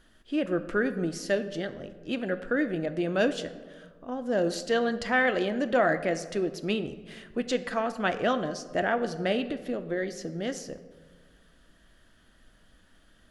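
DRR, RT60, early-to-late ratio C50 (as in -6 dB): 9.5 dB, 1.5 s, 13.0 dB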